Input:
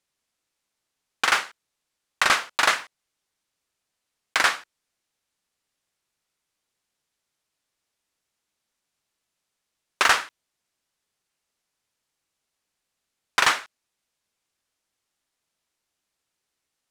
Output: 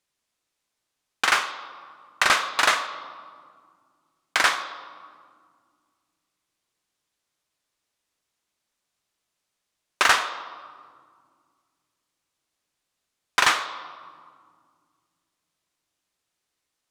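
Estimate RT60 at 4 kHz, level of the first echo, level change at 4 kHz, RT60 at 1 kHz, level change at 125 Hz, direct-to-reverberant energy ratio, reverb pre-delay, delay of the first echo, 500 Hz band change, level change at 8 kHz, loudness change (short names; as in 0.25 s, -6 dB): 1.1 s, none, +1.0 dB, 1.9 s, n/a, 8.0 dB, 3 ms, none, +1.0 dB, +0.5 dB, 0.0 dB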